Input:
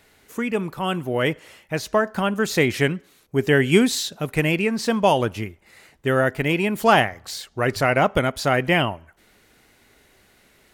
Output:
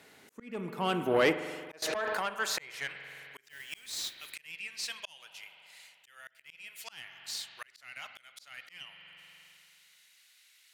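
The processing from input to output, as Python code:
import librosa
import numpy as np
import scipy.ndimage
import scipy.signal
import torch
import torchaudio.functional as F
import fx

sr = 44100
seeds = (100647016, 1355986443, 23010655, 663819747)

y = fx.filter_sweep_highpass(x, sr, from_hz=160.0, to_hz=3000.0, start_s=0.5, end_s=3.81, q=0.9)
y = fx.tube_stage(y, sr, drive_db=17.0, bias=0.3)
y = scipy.signal.sosfilt(scipy.signal.butter(2, 50.0, 'highpass', fs=sr, output='sos'), y)
y = fx.high_shelf(y, sr, hz=11000.0, db=-4.5)
y = fx.mod_noise(y, sr, seeds[0], snr_db=12, at=(3.47, 4.33))
y = fx.rev_spring(y, sr, rt60_s=2.1, pass_ms=(44,), chirp_ms=30, drr_db=11.0)
y = fx.auto_swell(y, sr, attack_ms=755.0)
y = fx.env_flatten(y, sr, amount_pct=100, at=(1.82, 2.26))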